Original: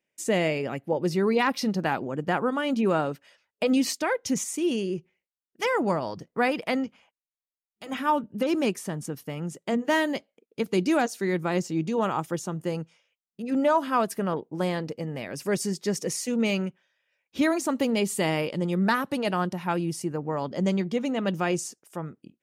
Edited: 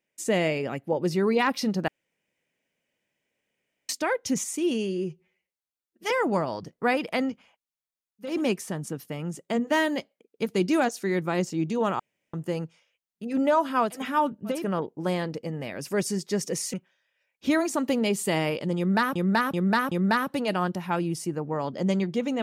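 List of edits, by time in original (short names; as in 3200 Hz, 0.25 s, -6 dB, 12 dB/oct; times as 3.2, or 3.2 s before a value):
1.88–3.89 room tone
4.74–5.65 stretch 1.5×
7.85–8.48 move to 14.11, crossfade 0.24 s
12.17–12.51 room tone
16.28–16.65 cut
18.69–19.07 loop, 4 plays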